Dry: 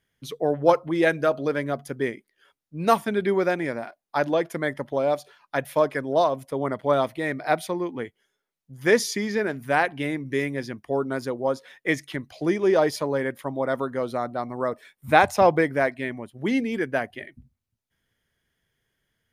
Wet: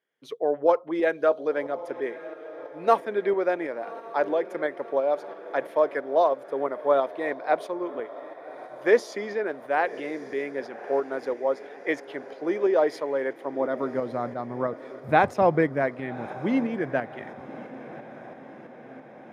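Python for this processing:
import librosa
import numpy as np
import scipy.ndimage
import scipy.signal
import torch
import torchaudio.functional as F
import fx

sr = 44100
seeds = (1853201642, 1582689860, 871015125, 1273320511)

p1 = fx.lowpass(x, sr, hz=1700.0, slope=6)
p2 = fx.filter_sweep_highpass(p1, sr, from_hz=430.0, to_hz=120.0, start_s=13.38, end_s=14.16, q=1.2)
p3 = p2 + fx.echo_diffused(p2, sr, ms=1130, feedback_pct=60, wet_db=-16.0, dry=0)
y = fx.tremolo_shape(p3, sr, shape='saw_up', hz=3.0, depth_pct=40)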